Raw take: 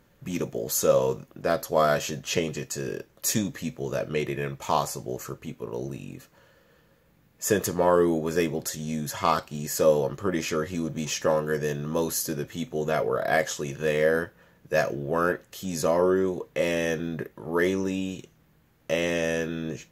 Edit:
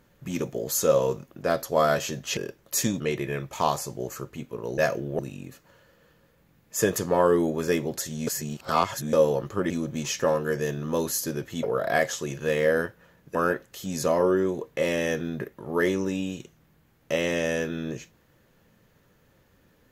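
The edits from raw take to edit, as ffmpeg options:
-filter_complex "[0:a]asplit=10[a][b][c][d][e][f][g][h][i][j];[a]atrim=end=2.372[k];[b]atrim=start=2.878:end=3.512[l];[c]atrim=start=4.088:end=5.872[m];[d]atrim=start=14.728:end=15.142[n];[e]atrim=start=5.868:end=8.952[o];[f]atrim=start=8.948:end=9.812,asetpts=PTS-STARTPTS,areverse[p];[g]atrim=start=9.808:end=10.382[q];[h]atrim=start=10.718:end=12.652[r];[i]atrim=start=13.008:end=14.732[s];[j]atrim=start=15.138[t];[k][l]acrossfade=d=0.004:c1=hsin:c2=hsin[u];[u][m]acrossfade=d=0.004:c1=hsin:c2=hsin[v];[v][n]acrossfade=d=0.004:c1=hsin:c2=hsin[w];[w][o]acrossfade=d=0.004:c1=hsin:c2=hsin[x];[x][p]acrossfade=d=0.004:c1=hsin:c2=hsin[y];[y][q]acrossfade=d=0.004:c1=hsin:c2=hsin[z];[z][r]acrossfade=d=0.004:c1=hsin:c2=hsin[aa];[aa][s]acrossfade=d=0.004:c1=hsin:c2=hsin[ab];[ab][t]acrossfade=d=0.004:c1=hsin:c2=hsin"

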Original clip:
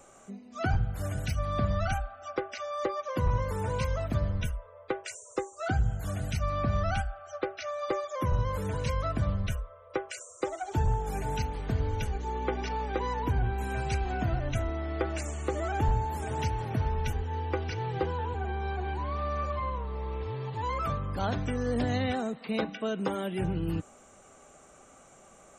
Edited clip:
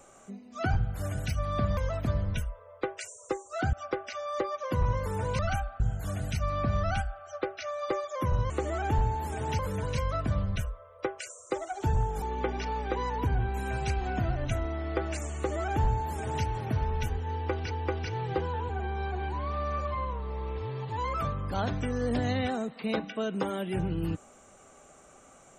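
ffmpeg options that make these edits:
-filter_complex "[0:a]asplit=9[a][b][c][d][e][f][g][h][i];[a]atrim=end=1.772[j];[b]atrim=start=3.838:end=5.802[k];[c]atrim=start=2.178:end=3.842[l];[d]atrim=start=1.768:end=2.182[m];[e]atrim=start=5.798:end=8.502[n];[f]atrim=start=15.398:end=16.492[o];[g]atrim=start=8.498:end=11.132[p];[h]atrim=start=12.258:end=17.752[q];[i]atrim=start=17.358[r];[j][k]acrossfade=d=0.004:c1=hsin:c2=hsin[s];[s][l]acrossfade=d=0.004:c1=hsin:c2=hsin[t];[t][m]acrossfade=d=0.004:c1=hsin:c2=hsin[u];[u][n]acrossfade=d=0.004:c1=hsin:c2=hsin[v];[v][o]acrossfade=d=0.004:c1=hsin:c2=hsin[w];[w][p]acrossfade=d=0.004:c1=hsin:c2=hsin[x];[x][q]acrossfade=d=0.004:c1=hsin:c2=hsin[y];[y][r]acrossfade=d=0.004:c1=hsin:c2=hsin"

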